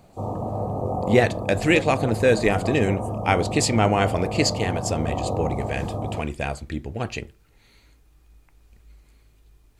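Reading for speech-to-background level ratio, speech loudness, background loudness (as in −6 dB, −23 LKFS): 5.5 dB, −23.5 LKFS, −29.0 LKFS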